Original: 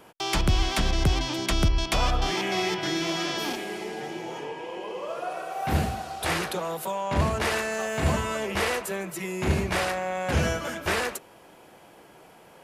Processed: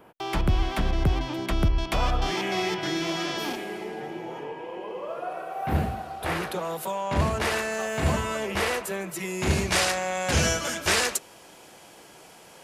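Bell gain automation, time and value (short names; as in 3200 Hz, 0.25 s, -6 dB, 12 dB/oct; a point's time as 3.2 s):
bell 6500 Hz 2.1 oct
1.6 s -12.5 dB
2.32 s -2.5 dB
3.44 s -2.5 dB
4.08 s -11.5 dB
6.25 s -11.5 dB
6.74 s 0 dB
9.02 s 0 dB
9.75 s +11.5 dB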